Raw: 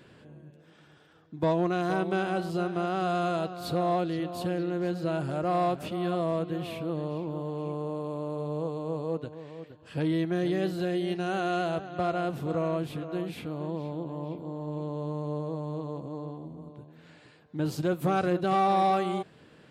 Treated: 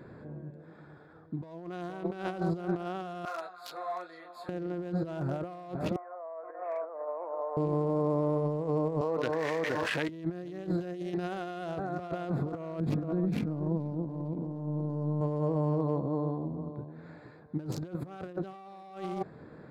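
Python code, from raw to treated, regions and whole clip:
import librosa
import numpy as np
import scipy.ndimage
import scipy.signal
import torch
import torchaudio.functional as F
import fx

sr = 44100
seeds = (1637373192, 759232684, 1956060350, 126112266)

y = fx.chain(x, sr, fx.highpass(hz=1300.0, slope=12),
    fx.high_shelf(hz=9500.0, db=7.5),
    fx.detune_double(cents=19), at=(3.25, 4.49))
y = fx.chain(y, sr, fx.over_compress(threshold_db=-34.0, ratio=-0.5),
    fx.ellip_bandpass(low_hz=570.0, high_hz=2100.0, order=3, stop_db=60),
    fx.air_absorb(metres=340.0), at=(5.96, 7.57))
y = fx.chain(y, sr, fx.highpass(hz=1200.0, slope=6),
    fx.peak_eq(hz=2000.0, db=9.0, octaves=0.47),
    fx.env_flatten(amount_pct=100), at=(9.01, 10.09))
y = fx.chain(y, sr, fx.peak_eq(hz=200.0, db=12.0, octaves=1.2),
    fx.over_compress(threshold_db=-31.0, ratio=-1.0), at=(12.8, 15.21))
y = fx.wiener(y, sr, points=15)
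y = fx.over_compress(y, sr, threshold_db=-34.0, ratio=-0.5)
y = F.gain(torch.from_numpy(y), 2.0).numpy()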